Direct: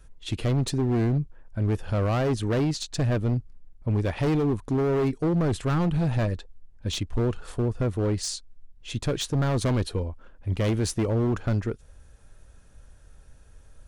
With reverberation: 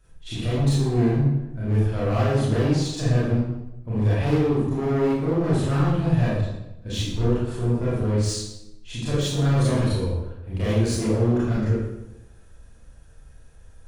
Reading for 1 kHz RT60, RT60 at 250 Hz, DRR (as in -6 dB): 0.85 s, 1.0 s, -9.5 dB